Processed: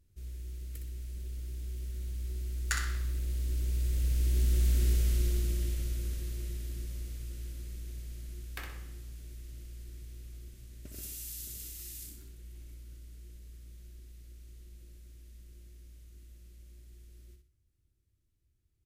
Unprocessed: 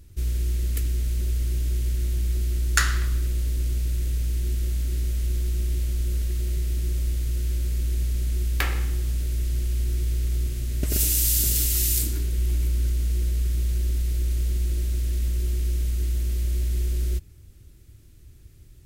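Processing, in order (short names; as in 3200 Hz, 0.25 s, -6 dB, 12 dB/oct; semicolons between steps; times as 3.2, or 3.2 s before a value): Doppler pass-by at 4.85, 8 m/s, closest 4.5 m; on a send: feedback echo 62 ms, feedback 31%, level -6.5 dB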